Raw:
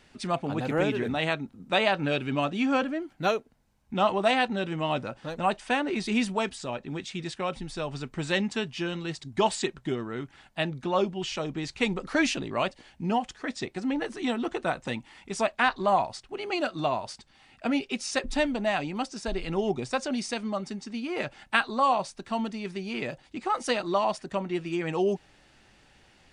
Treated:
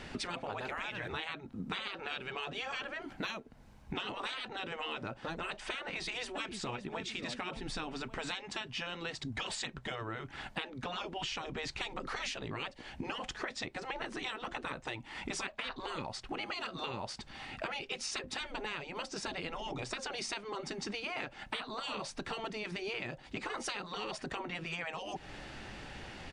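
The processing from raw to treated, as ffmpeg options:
-filter_complex "[0:a]asplit=2[a][b];[b]afade=t=in:st=5.78:d=0.01,afade=t=out:st=6.88:d=0.01,aecho=0:1:570|1140|1710:0.141254|0.0494388|0.0173036[c];[a][c]amix=inputs=2:normalize=0,lowpass=f=3.5k:p=1,afftfilt=real='re*lt(hypot(re,im),0.1)':imag='im*lt(hypot(re,im),0.1)':win_size=1024:overlap=0.75,acompressor=threshold=-49dB:ratio=12,volume=13dB"

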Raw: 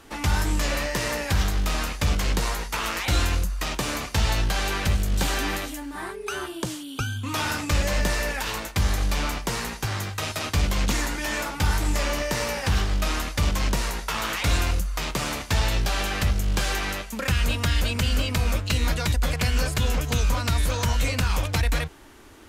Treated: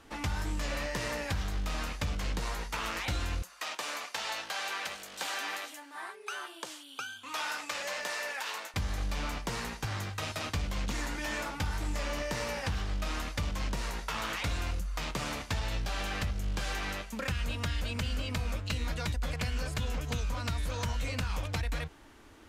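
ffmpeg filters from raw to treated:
-filter_complex "[0:a]asettb=1/sr,asplit=3[a][b][c];[a]atrim=end=3.424[d];[b]atrim=start=3.42:end=8.74,asetpts=PTS-STARTPTS,afade=t=in:d=0.004:c=qsin,afade=t=out:st=5.316:d=0.004:c=qsin,highpass=640[e];[c]atrim=start=8.736[f];[d][e]acrossfade=d=0.004:c1=hsin:c2=qsin[g];[g][f]acrossfade=d=0.004:c1=qsin:c2=hsin,highshelf=f=8.9k:g=-8.5,bandreject=f=380:w=12,acompressor=threshold=-23dB:ratio=6,volume=-6dB"

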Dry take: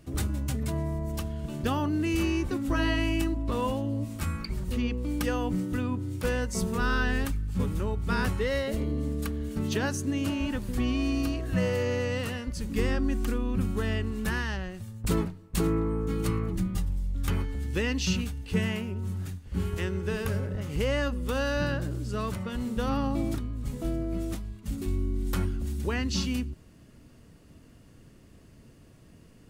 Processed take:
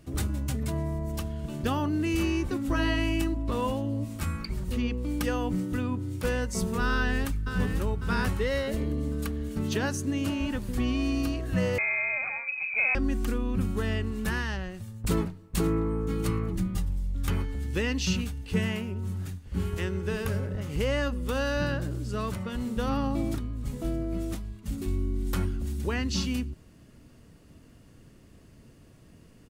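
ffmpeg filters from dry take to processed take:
-filter_complex "[0:a]asplit=2[a][b];[b]afade=t=in:st=6.91:d=0.01,afade=t=out:st=7.5:d=0.01,aecho=0:1:550|1100|1650|2200|2750:0.421697|0.189763|0.0853935|0.0384271|0.0172922[c];[a][c]amix=inputs=2:normalize=0,asettb=1/sr,asplit=3[d][e][f];[d]atrim=end=11.784[g];[e]atrim=start=11.78:end=12.95,asetpts=PTS-STARTPTS,afade=t=in:d=0.004:c=qsin,afade=t=out:st=1.166:d=0.004:c=qsin,lowpass=f=2.2k:t=q:w=0.5098,lowpass=f=2.2k:t=q:w=0.6013,lowpass=f=2.2k:t=q:w=0.9,lowpass=f=2.2k:t=q:w=2.563,afreqshift=-2600[h];[f]atrim=start=12.946[i];[g][h]acrossfade=d=0.004:c1=hsin:c2=qsin[j];[j][i]acrossfade=d=0.004:c1=qsin:c2=hsin"

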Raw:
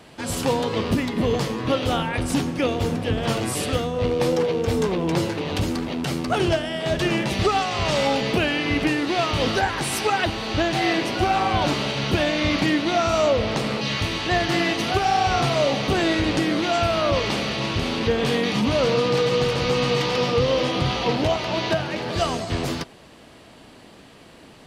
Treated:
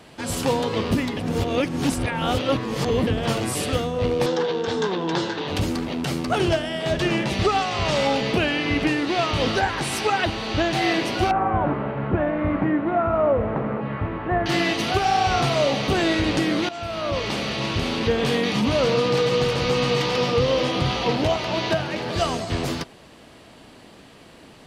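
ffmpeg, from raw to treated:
-filter_complex "[0:a]asettb=1/sr,asplit=3[a][b][c];[a]atrim=end=4.264[d];[b]atrim=start=4.26:end=5.48,asetpts=PTS-STARTPTS,afade=t=in:d=0.004:c=qsin,afade=t=out:st=1.216:d=0.004:c=qsin,highpass=200,equalizer=f=260:t=q:w=4:g=-4,equalizer=f=580:t=q:w=4:g=-5,equalizer=f=920:t=q:w=4:g=4,equalizer=f=1.6k:t=q:w=4:g=7,equalizer=f=2.3k:t=q:w=4:g=-6,equalizer=f=3.6k:t=q:w=4:g=7,lowpass=f=6.7k:w=0.5412,lowpass=f=6.7k:w=1.3066[e];[c]atrim=start=5.476[f];[d][e]acrossfade=d=0.004:c1=hsin:c2=qsin[g];[g][f]acrossfade=d=0.004:c1=qsin:c2=hsin,asettb=1/sr,asplit=3[h][i][j];[h]atrim=end=6.924[k];[i]atrim=start=6.92:end=10.73,asetpts=PTS-STARTPTS,afade=t=in:d=0.004:c=qsin,afade=t=out:st=3.806:d=0.004:c=qsin,highshelf=f=12k:g=-10[l];[j]atrim=start=10.726[m];[k][l]acrossfade=d=0.004:c1=hsin:c2=qsin[n];[n][m]acrossfade=d=0.004:c1=qsin:c2=hsin,asettb=1/sr,asplit=3[o][p][q];[o]atrim=end=11.314[r];[p]atrim=start=11.31:end=14.46,asetpts=PTS-STARTPTS,afade=t=in:d=0.004:c=qsin,afade=t=out:st=3.146:d=0.004:c=qsin,lowpass=f=1.6k:w=0.5412,lowpass=f=1.6k:w=1.3066[s];[q]atrim=start=14.456[t];[r][s]acrossfade=d=0.004:c1=hsin:c2=qsin[u];[u][t]acrossfade=d=0.004:c1=qsin:c2=hsin,asplit=4[v][w][x][y];[v]atrim=end=1.172[z];[w]atrim=start=1.168:end=3.072,asetpts=PTS-STARTPTS,areverse[aa];[x]atrim=start=3.068:end=16.69,asetpts=PTS-STARTPTS,afade=t=out:st=13.618:d=0.004:c=hsin:silence=0.16788[ab];[y]atrim=start=16.69,asetpts=PTS-STARTPTS,afade=t=in:d=1.18:c=qsin:silence=0.16788[ac];[z][aa]acrossfade=d=0.004:c1=hsin:c2=hsin[ad];[ab][ac]concat=n=2:v=0:a=1[ae];[ad][ae]acrossfade=d=0.004:c1=hsin:c2=hsin"

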